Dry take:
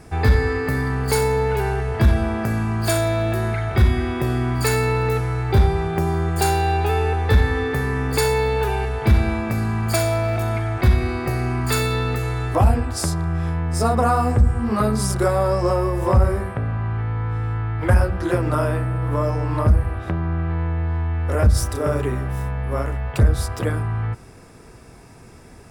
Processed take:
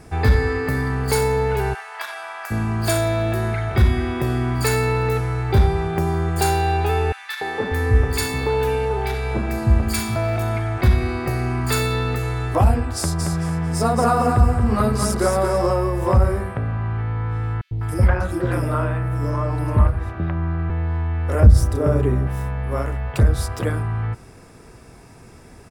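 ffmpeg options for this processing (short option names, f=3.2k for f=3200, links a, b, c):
-filter_complex "[0:a]asplit=3[a][b][c];[a]afade=t=out:st=1.73:d=0.02[d];[b]highpass=f=860:w=0.5412,highpass=f=860:w=1.3066,afade=t=in:st=1.73:d=0.02,afade=t=out:st=2.5:d=0.02[e];[c]afade=t=in:st=2.5:d=0.02[f];[d][e][f]amix=inputs=3:normalize=0,asettb=1/sr,asplit=3[g][h][i];[g]atrim=end=7.124[j];[h]atrim=start=7.12:end=10.16,asetpts=PTS-STARTPTS,afade=t=in:d=0.004:c=qsin,afade=t=out:st=3.036:d=0.004:c=qsin,acrossover=split=180|1300[k][l][m];[l]adelay=290[n];[k]adelay=590[o];[o][n][m]amix=inputs=3:normalize=0,atrim=end_sample=134064[p];[i]atrim=start=10.156[q];[j][p]acrossfade=d=0.004:c1=hsin:c2=qsin[r];[r][q]acrossfade=d=0.004:c1=qsin:c2=hsin,asplit=3[s][t][u];[s]afade=t=out:st=13.18:d=0.02[v];[t]aecho=1:1:225|450|675|900:0.562|0.169|0.0506|0.0152,afade=t=in:st=13.18:d=0.02,afade=t=out:st=15.66:d=0.02[w];[u]afade=t=in:st=15.66:d=0.02[x];[v][w][x]amix=inputs=3:normalize=0,asettb=1/sr,asplit=3[y][z][aa];[y]atrim=end=17.614[ab];[z]atrim=start=17.61:end=20.7,asetpts=PTS-STARTPTS,afade=t=in:d=0.004:c=qsin,afade=t=out:st=3.086:d=0.004:c=qsin,acrossover=split=540|3700[ac][ad][ae];[ac]adelay=100[af];[ad]adelay=200[ag];[af][ag][ae]amix=inputs=3:normalize=0,atrim=end_sample=136269[ah];[aa]atrim=start=20.696[ai];[ab][ah]acrossfade=d=0.004:c1=hsin:c2=qsin[aj];[aj][ai]acrossfade=d=0.004:c1=qsin:c2=hsin,asettb=1/sr,asplit=3[ak][al][am];[ak]atrim=end=21.404[an];[al]atrim=start=21.4:end=22.27,asetpts=PTS-STARTPTS,afade=t=in:d=0.004:c=qsin,afade=t=out:st=0.866:d=0.004:c=qsin,tiltshelf=f=730:g=5.5[ao];[am]atrim=start=22.266[ap];[an][ao]acrossfade=d=0.004:c1=hsin:c2=qsin[aq];[aq][ap]acrossfade=d=0.004:c1=qsin:c2=hsin"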